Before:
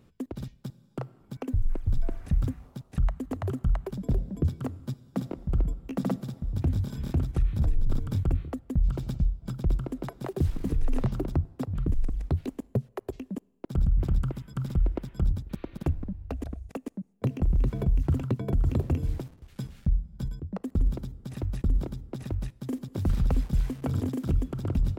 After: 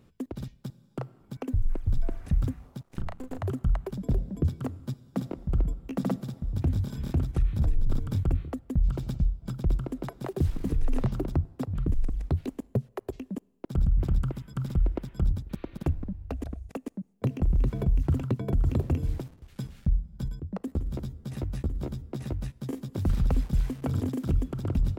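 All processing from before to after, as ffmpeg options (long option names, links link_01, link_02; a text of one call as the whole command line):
ffmpeg -i in.wav -filter_complex "[0:a]asettb=1/sr,asplit=3[link_01][link_02][link_03];[link_01]atrim=end=2.834[link_04];[link_02]atrim=start=2.83:end=3.39,asetpts=PTS-STARTPTS,afade=type=in:duration=0.004:curve=qsin,afade=type=out:start_time=0.556:duration=0.004:curve=qsin,lowshelf=frequency=71:gain=-10.5,aeval=exprs='max(val(0),0)':channel_layout=same,asplit=2[link_05][link_06];[link_06]adelay=35,volume=-5dB[link_07];[link_05][link_07]amix=inputs=2:normalize=0,atrim=end_sample=24696[link_08];[link_03]atrim=start=3.386[link_09];[link_04][link_08]acrossfade=duration=0.004:curve1=hsin:curve2=qsin[link_10];[link_10][link_09]acrossfade=duration=0.004:curve1=qsin:curve2=hsin,asettb=1/sr,asplit=3[link_11][link_12][link_13];[link_11]atrim=end=20.664[link_14];[link_12]atrim=start=20.66:end=22.93,asetpts=PTS-STARTPTS,afade=type=in:duration=0.004:curve=qsin,afade=type=out:start_time=2.266:duration=0.004:curve=qsin,acompressor=threshold=-27dB:ratio=2.5:attack=3.2:release=140:knee=1:detection=peak,asplit=2[link_15][link_16];[link_16]adelay=14,volume=-4.5dB[link_17];[link_15][link_17]amix=inputs=2:normalize=0,atrim=end_sample=100107[link_18];[link_13]atrim=start=22.926[link_19];[link_14][link_18]acrossfade=duration=0.004:curve1=hsin:curve2=qsin[link_20];[link_20][link_19]acrossfade=duration=0.004:curve1=qsin:curve2=hsin" out.wav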